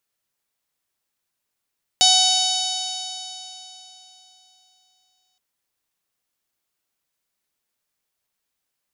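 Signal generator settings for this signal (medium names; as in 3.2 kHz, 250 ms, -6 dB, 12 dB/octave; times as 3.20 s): stretched partials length 3.37 s, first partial 746 Hz, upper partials -19/-15.5/1/5/1/0.5/-2.5/1/-18/-17.5/-10/-13 dB, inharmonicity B 0.00066, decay 3.51 s, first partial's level -20.5 dB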